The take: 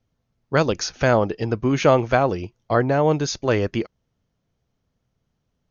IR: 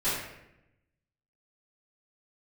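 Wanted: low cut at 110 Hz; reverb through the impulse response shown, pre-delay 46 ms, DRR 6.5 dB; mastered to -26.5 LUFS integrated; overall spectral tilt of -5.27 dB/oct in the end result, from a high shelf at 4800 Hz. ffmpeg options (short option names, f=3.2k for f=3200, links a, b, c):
-filter_complex "[0:a]highpass=110,highshelf=f=4.8k:g=4,asplit=2[a][b];[1:a]atrim=start_sample=2205,adelay=46[c];[b][c]afir=irnorm=-1:irlink=0,volume=-17dB[d];[a][d]amix=inputs=2:normalize=0,volume=-6.5dB"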